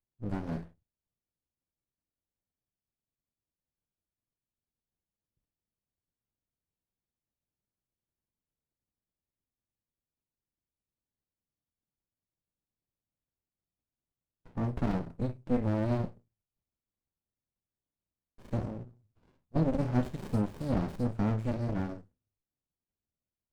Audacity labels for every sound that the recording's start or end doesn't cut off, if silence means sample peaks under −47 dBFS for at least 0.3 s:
14.460000	16.120000	sound
18.400000	18.890000	sound
19.540000	22.010000	sound